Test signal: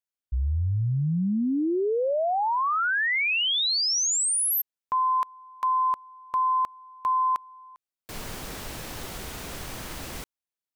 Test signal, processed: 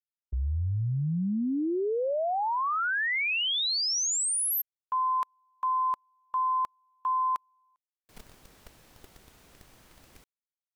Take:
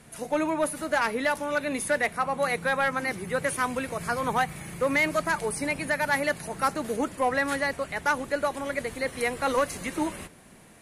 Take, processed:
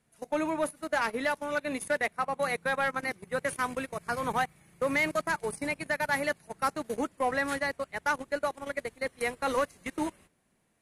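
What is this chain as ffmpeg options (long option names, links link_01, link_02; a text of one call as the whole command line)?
ffmpeg -i in.wav -af "agate=range=-17dB:threshold=-36dB:ratio=16:release=22:detection=peak,volume=-3.5dB" out.wav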